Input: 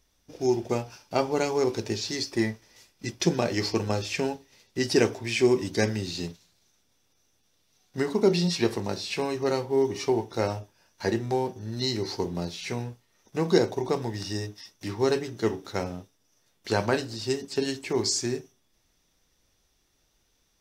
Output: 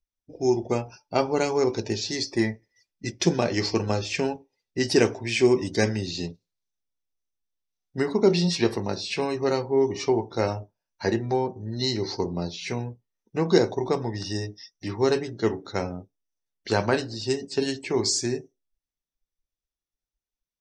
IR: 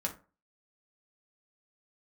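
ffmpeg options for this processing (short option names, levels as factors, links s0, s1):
-af "afftdn=nr=29:nf=-48,volume=1.26"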